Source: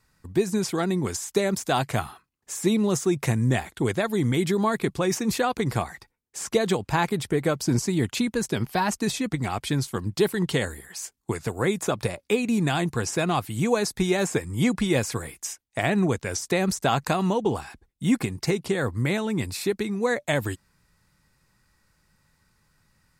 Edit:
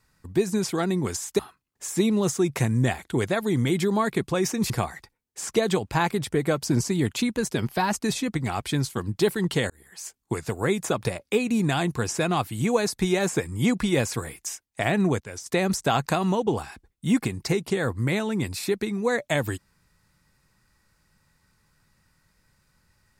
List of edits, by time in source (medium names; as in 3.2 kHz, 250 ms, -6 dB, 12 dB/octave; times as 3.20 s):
1.39–2.06 s: delete
5.37–5.68 s: delete
10.68–11.32 s: fade in equal-power
16.18–16.44 s: gain -8 dB